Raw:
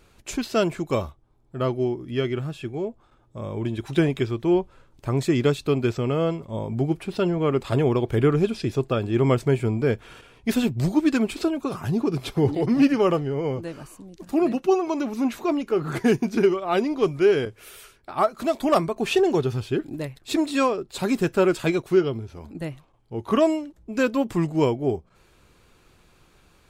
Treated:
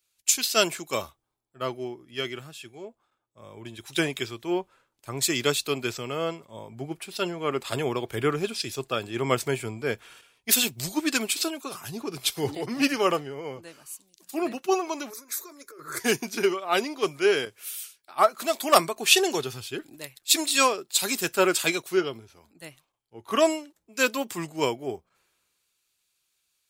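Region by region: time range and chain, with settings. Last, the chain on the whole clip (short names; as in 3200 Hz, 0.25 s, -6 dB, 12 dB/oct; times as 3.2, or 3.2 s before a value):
15.1–16 negative-ratio compressor -27 dBFS + fixed phaser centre 780 Hz, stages 6
whole clip: tilt +4 dB/oct; three-band expander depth 70%; gain -1.5 dB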